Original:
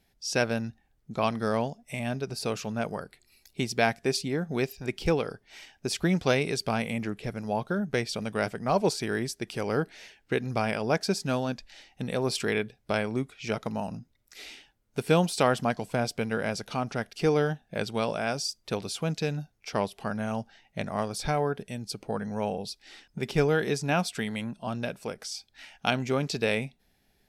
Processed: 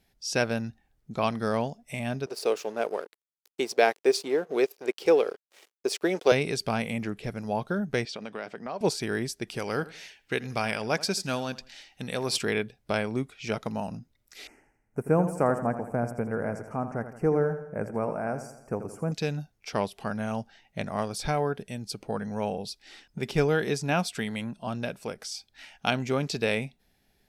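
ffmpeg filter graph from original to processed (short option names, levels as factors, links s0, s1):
-filter_complex "[0:a]asettb=1/sr,asplit=3[s0][s1][s2];[s0]atrim=end=2.264[s3];[s1]atrim=start=2.26:end=6.32,asetpts=PTS-STARTPTS,afade=t=in:d=0.004:c=qsin,afade=t=out:st=4.056:d=0.004:c=qsin,aeval=exprs='sgn(val(0))*max(abs(val(0))-0.00501,0)':c=same,highpass=f=420:t=q:w=2.6[s4];[s2]atrim=start=6.316[s5];[s3][s4]acrossfade=d=0.004:c1=hsin:c2=qsin[s6];[s6][s5]acrossfade=d=0.004:c1=qsin:c2=hsin,asettb=1/sr,asplit=3[s7][s8][s9];[s7]atrim=end=8.054[s10];[s8]atrim=start=8.05:end=8.81,asetpts=PTS-STARTPTS,afade=t=in:d=0.004:c=qsin,afade=t=out:st=0.756:d=0.004:c=qsin,highpass=250,lowpass=4700,acompressor=threshold=0.0224:ratio=3:attack=3.2:release=140:knee=1:detection=peak[s11];[s9]atrim=start=8.806[s12];[s10][s11]acrossfade=d=0.004:c1=hsin:c2=qsin[s13];[s13][s12]acrossfade=d=0.004:c1=qsin:c2=hsin,asettb=1/sr,asplit=3[s14][s15][s16];[s14]atrim=end=9.594[s17];[s15]atrim=start=9.59:end=12.38,asetpts=PTS-STARTPTS,afade=t=in:d=0.004:c=qsin,afade=t=out:st=2.786:d=0.004:c=qsin,tiltshelf=f=1100:g=-4,asplit=2[s18][s19];[s19]adelay=83,lowpass=f=3400:p=1,volume=0.126,asplit=2[s20][s21];[s21]adelay=83,lowpass=f=3400:p=1,volume=0.31,asplit=2[s22][s23];[s23]adelay=83,lowpass=f=3400:p=1,volume=0.31[s24];[s18][s20][s22][s24]amix=inputs=4:normalize=0,atrim=end_sample=123039[s25];[s16]atrim=start=12.376[s26];[s17][s25]acrossfade=d=0.004:c1=hsin:c2=qsin[s27];[s27][s26]acrossfade=d=0.004:c1=qsin:c2=hsin,asettb=1/sr,asplit=3[s28][s29][s30];[s28]atrim=end=14.474[s31];[s29]atrim=start=14.47:end=19.12,asetpts=PTS-STARTPTS,afade=t=in:d=0.004:c=qsin,afade=t=out:st=4.646:d=0.004:c=qsin,asuperstop=centerf=3700:order=4:qfactor=0.65,highshelf=f=2100:g=-9.5,aecho=1:1:83|166|249|332|415|498:0.282|0.147|0.0762|0.0396|0.0206|0.0107,atrim=end_sample=205065[s32];[s30]atrim=start=19.116[s33];[s31][s32]acrossfade=d=0.004:c1=hsin:c2=qsin[s34];[s34][s33]acrossfade=d=0.004:c1=qsin:c2=hsin"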